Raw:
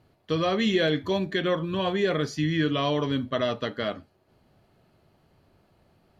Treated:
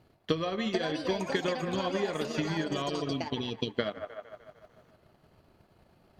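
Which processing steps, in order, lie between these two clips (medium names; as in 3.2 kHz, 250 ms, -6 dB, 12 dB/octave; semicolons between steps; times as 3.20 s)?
rattle on loud lows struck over -31 dBFS, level -37 dBFS; 2.89–3.79 s: brick-wall FIR band-stop 490–2200 Hz; feedback echo behind a band-pass 151 ms, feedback 59%, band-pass 1 kHz, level -8 dB; compression 4:1, threshold -31 dBFS, peak gain reduction 10.5 dB; hum notches 50/100/150 Hz; transient shaper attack +7 dB, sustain -9 dB; ever faster or slower copies 528 ms, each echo +6 st, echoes 2, each echo -6 dB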